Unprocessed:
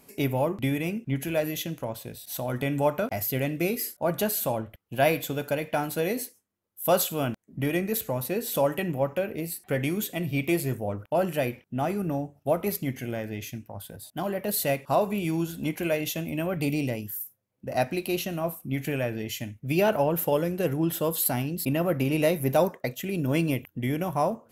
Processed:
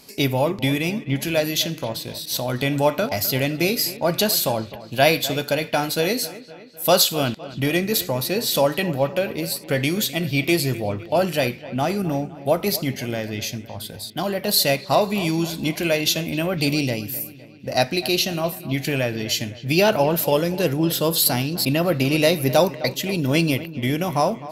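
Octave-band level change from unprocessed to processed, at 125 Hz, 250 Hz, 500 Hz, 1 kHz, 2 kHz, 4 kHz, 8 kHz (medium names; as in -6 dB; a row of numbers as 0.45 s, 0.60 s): +5.0 dB, +5.0 dB, +5.5 dB, +5.5 dB, +8.5 dB, +15.0 dB, +9.0 dB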